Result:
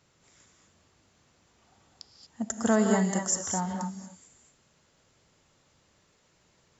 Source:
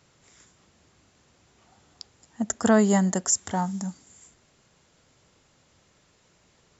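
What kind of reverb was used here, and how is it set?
reverb whose tail is shaped and stops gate 260 ms rising, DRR 3 dB
level −5 dB

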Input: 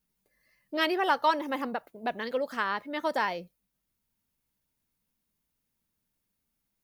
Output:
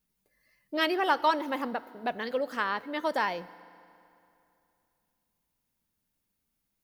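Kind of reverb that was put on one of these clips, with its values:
feedback delay network reverb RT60 2.8 s, high-frequency decay 0.8×, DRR 17.5 dB

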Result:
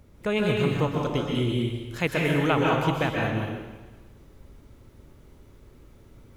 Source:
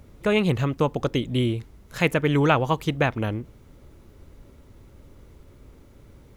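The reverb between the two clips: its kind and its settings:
dense smooth reverb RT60 1.2 s, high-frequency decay 1×, pre-delay 115 ms, DRR −1.5 dB
level −5 dB

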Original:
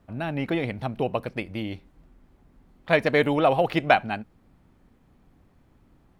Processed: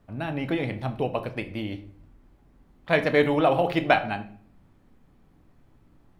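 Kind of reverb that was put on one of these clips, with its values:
rectangular room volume 63 cubic metres, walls mixed, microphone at 0.3 metres
level −1.5 dB

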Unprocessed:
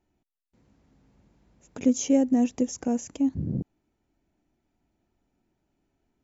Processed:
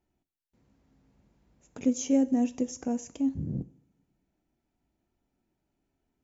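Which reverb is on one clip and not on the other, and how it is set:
coupled-rooms reverb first 0.5 s, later 1.8 s, from −21 dB, DRR 12.5 dB
level −4.5 dB

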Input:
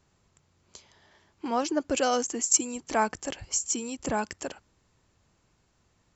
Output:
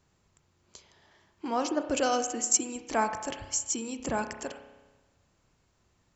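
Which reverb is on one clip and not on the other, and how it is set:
spring reverb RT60 1.2 s, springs 31 ms, chirp 65 ms, DRR 8 dB
level −2 dB

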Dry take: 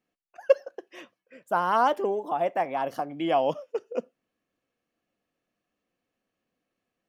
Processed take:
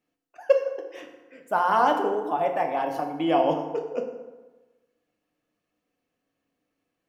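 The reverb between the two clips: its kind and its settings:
feedback delay network reverb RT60 1.2 s, low-frequency decay 1×, high-frequency decay 0.6×, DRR 2.5 dB

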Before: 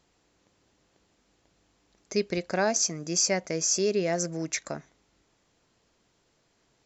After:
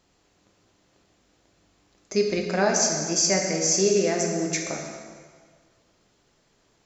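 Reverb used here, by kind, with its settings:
dense smooth reverb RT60 1.7 s, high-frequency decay 0.85×, DRR 0.5 dB
level +1.5 dB

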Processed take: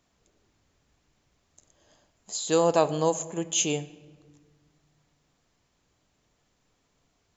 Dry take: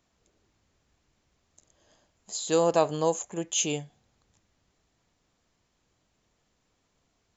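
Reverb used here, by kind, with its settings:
rectangular room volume 1,400 cubic metres, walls mixed, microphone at 0.33 metres
level +1.5 dB

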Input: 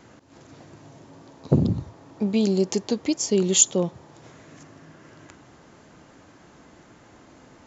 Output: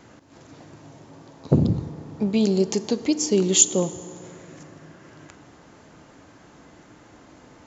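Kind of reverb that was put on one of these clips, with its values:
feedback delay network reverb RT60 3.1 s, high-frequency decay 0.55×, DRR 13.5 dB
level +1 dB

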